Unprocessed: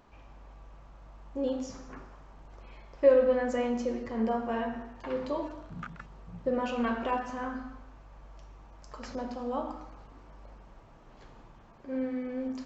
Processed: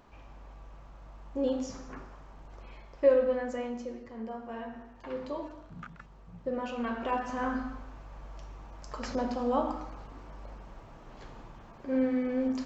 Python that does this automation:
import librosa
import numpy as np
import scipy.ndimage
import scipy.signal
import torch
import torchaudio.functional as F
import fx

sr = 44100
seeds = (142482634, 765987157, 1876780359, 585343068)

y = fx.gain(x, sr, db=fx.line((2.67, 1.5), (4.26, -10.5), (5.11, -4.0), (6.87, -4.0), (7.53, 5.0)))